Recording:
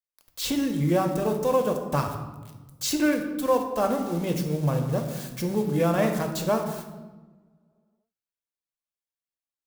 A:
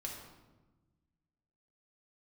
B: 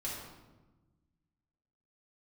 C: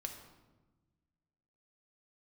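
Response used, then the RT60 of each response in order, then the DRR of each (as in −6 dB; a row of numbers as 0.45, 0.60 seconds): C; 1.2, 1.2, 1.2 seconds; −1.5, −6.5, 3.5 decibels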